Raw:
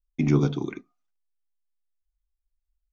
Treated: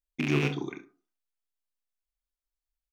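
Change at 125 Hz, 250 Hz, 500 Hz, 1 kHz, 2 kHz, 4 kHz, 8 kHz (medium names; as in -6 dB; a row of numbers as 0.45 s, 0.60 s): -7.0 dB, -6.0 dB, -3.5 dB, -1.0 dB, +7.0 dB, +5.0 dB, no reading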